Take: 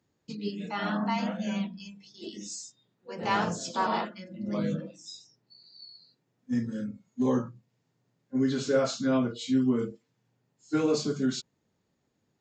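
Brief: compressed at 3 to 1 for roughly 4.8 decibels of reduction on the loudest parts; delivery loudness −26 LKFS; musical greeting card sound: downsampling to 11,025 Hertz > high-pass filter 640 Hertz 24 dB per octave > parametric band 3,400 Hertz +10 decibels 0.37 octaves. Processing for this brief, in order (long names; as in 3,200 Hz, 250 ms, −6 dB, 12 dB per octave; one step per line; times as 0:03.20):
downward compressor 3 to 1, threshold −27 dBFS
downsampling to 11,025 Hz
high-pass filter 640 Hz 24 dB per octave
parametric band 3,400 Hz +10 dB 0.37 octaves
level +12 dB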